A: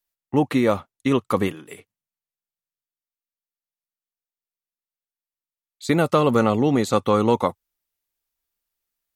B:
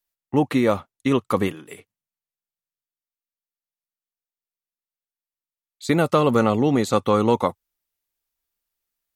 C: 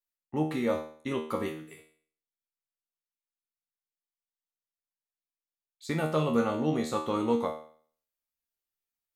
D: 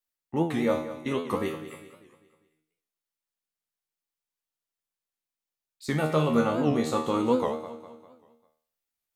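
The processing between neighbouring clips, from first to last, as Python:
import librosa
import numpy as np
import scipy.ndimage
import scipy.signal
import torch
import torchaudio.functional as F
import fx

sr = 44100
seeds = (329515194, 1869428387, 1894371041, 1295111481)

y1 = x
y2 = fx.comb_fb(y1, sr, f0_hz=78.0, decay_s=0.5, harmonics='all', damping=0.0, mix_pct=90)
y3 = fx.echo_feedback(y2, sr, ms=199, feedback_pct=46, wet_db=-13.0)
y3 = fx.record_warp(y3, sr, rpm=78.0, depth_cents=160.0)
y3 = y3 * librosa.db_to_amplitude(3.0)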